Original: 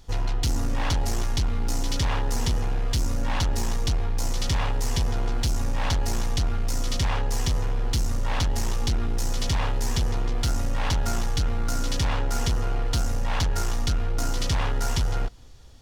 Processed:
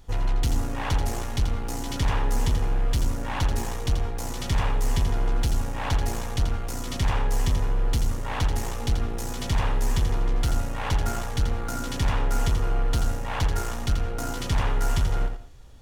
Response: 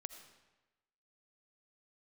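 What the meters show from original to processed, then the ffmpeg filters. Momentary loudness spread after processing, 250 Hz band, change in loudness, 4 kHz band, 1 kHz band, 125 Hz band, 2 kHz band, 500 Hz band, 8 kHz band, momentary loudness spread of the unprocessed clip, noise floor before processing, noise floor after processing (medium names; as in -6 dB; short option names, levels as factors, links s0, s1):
4 LU, 0.0 dB, -0.5 dB, -3.5 dB, +1.0 dB, 0.0 dB, 0.0 dB, +0.5 dB, -3.5 dB, 2 LU, -24 dBFS, -31 dBFS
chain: -filter_complex "[0:a]equalizer=f=5000:w=1.2:g=-7,asplit=2[s0][s1];[1:a]atrim=start_sample=2205,atrim=end_sample=6174,adelay=84[s2];[s1][s2]afir=irnorm=-1:irlink=0,volume=0.708[s3];[s0][s3]amix=inputs=2:normalize=0"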